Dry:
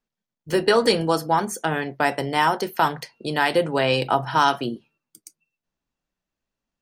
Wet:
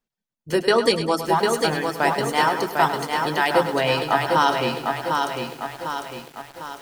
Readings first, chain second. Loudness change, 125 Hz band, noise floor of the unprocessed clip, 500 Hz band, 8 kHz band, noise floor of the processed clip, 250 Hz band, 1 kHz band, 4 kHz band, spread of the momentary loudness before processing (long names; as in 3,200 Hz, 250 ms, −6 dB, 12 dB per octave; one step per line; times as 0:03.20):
0.0 dB, −0.5 dB, below −85 dBFS, +1.5 dB, +2.0 dB, below −85 dBFS, +0.5 dB, +1.5 dB, +1.5 dB, 8 LU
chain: reverb reduction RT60 0.95 s
echo with a time of its own for lows and highs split 350 Hz, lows 185 ms, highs 103 ms, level −10.5 dB
feedback echo at a low word length 751 ms, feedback 55%, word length 7 bits, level −4 dB